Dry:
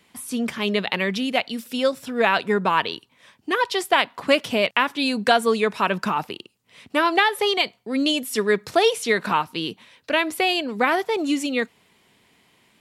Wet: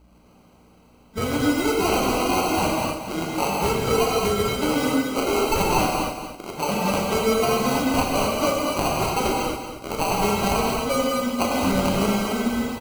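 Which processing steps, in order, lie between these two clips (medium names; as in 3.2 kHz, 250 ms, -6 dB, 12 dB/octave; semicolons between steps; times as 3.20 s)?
reverse the whole clip; compression, threshold -20 dBFS, peak gain reduction 8.5 dB; de-hum 233.2 Hz, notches 38; sample-and-hold 25×; hum 60 Hz, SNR 28 dB; on a send: feedback delay 230 ms, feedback 28%, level -9 dB; on the sum: gated-style reverb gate 300 ms flat, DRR -3.5 dB; trim -1.5 dB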